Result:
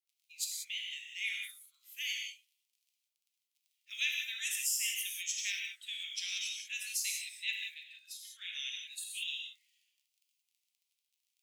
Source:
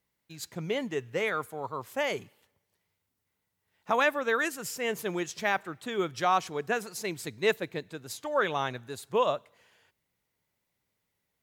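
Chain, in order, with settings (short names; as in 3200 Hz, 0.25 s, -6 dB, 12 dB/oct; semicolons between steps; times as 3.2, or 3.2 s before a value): 7.18–8.53 high shelf 4000 Hz -8.5 dB; crackle 31/s -45 dBFS; spectral noise reduction 11 dB; dynamic EQ 8500 Hz, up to +5 dB, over -54 dBFS, Q 0.8; steep high-pass 2400 Hz 48 dB/oct; non-linear reverb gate 0.21 s flat, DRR -0.5 dB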